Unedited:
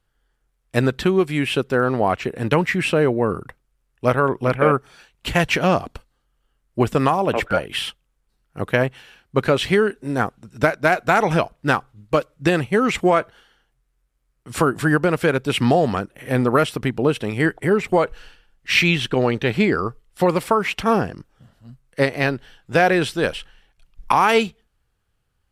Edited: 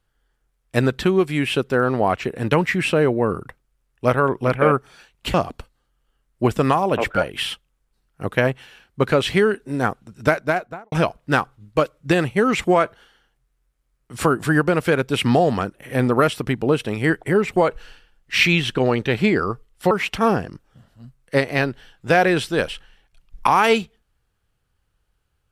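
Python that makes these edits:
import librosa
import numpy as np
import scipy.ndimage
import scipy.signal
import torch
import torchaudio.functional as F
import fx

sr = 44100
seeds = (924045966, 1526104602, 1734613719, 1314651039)

y = fx.studio_fade_out(x, sr, start_s=10.68, length_s=0.6)
y = fx.edit(y, sr, fx.cut(start_s=5.34, length_s=0.36),
    fx.cut(start_s=20.27, length_s=0.29), tone=tone)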